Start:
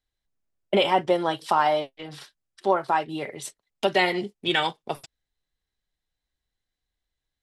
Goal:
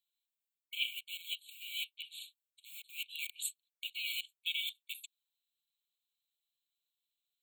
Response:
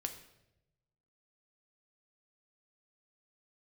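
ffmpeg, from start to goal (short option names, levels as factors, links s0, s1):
-filter_complex "[0:a]highpass=850,acrossover=split=2800[s0][s1];[s0]acrusher=bits=5:mix=0:aa=0.000001[s2];[s2][s1]amix=inputs=2:normalize=0,equalizer=f=5800:w=1.1:g=-12.5,areverse,acompressor=threshold=0.0178:ratio=16,areverse,afftfilt=real='re*eq(mod(floor(b*sr/1024/2200),2),1)':imag='im*eq(mod(floor(b*sr/1024/2200),2),1)':win_size=1024:overlap=0.75,volume=2.51"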